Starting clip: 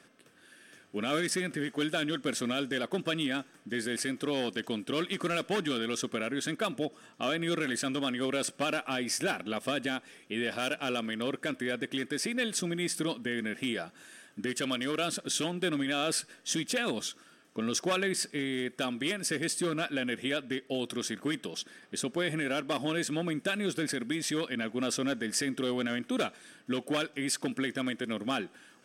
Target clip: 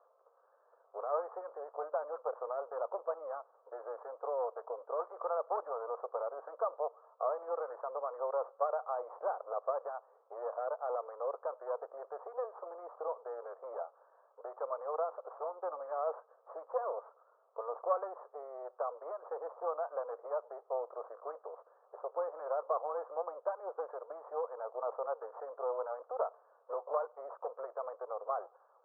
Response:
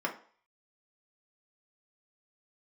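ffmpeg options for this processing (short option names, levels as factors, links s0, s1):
-af "aeval=exprs='if(lt(val(0),0),0.251*val(0),val(0))':c=same,asuperpass=centerf=760:order=12:qfactor=1,volume=1.68"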